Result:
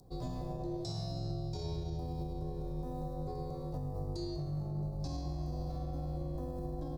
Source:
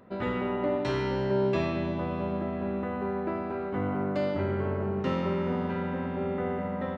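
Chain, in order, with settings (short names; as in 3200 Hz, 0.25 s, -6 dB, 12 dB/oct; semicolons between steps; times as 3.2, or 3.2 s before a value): EQ curve 150 Hz 0 dB, 260 Hz -13 dB, 920 Hz -4 dB, 1900 Hz -29 dB, 3200 Hz -22 dB, 4700 Hz +11 dB; limiter -32.5 dBFS, peak gain reduction 10 dB; frequency shift -240 Hz; gain +2 dB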